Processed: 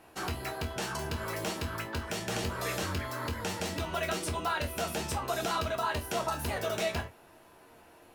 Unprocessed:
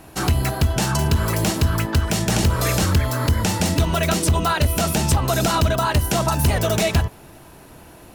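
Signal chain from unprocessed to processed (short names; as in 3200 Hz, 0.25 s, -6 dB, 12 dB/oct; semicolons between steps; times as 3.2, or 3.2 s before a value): tone controls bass -11 dB, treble -6 dB; resonator bank D#2 minor, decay 0.21 s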